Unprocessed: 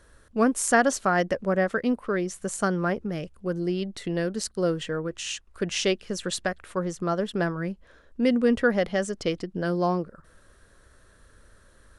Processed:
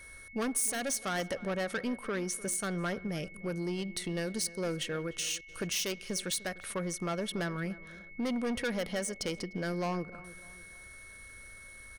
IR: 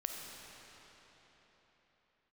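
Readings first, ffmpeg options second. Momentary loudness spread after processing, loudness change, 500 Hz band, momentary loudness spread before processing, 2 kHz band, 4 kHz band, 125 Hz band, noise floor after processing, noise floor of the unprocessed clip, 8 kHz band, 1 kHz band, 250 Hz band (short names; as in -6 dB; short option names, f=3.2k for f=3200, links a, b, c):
16 LU, -7.5 dB, -10.0 dB, 10 LU, -8.0 dB, -3.0 dB, -7.0 dB, -51 dBFS, -57 dBFS, -1.0 dB, -11.0 dB, -9.0 dB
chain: -filter_complex "[0:a]equalizer=f=370:t=o:w=0.77:g=-2,asoftclip=type=tanh:threshold=-23.5dB,aemphasis=mode=production:type=75fm,acompressor=threshold=-34dB:ratio=2,asplit=2[a][b];[b]adelay=299,lowpass=f=2.2k:p=1,volume=-18dB,asplit=2[c][d];[d]adelay=299,lowpass=f=2.2k:p=1,volume=0.4,asplit=2[e][f];[f]adelay=299,lowpass=f=2.2k:p=1,volume=0.4[g];[a][c][e][g]amix=inputs=4:normalize=0,asplit=2[h][i];[1:a]atrim=start_sample=2205,afade=t=out:st=0.23:d=0.01,atrim=end_sample=10584,lowpass=4.7k[j];[i][j]afir=irnorm=-1:irlink=0,volume=-14.5dB[k];[h][k]amix=inputs=2:normalize=0,anlmdn=0.000398,aeval=exprs='val(0)+0.00398*sin(2*PI*2200*n/s)':c=same,bandreject=f=7.4k:w=7,volume=-1.5dB"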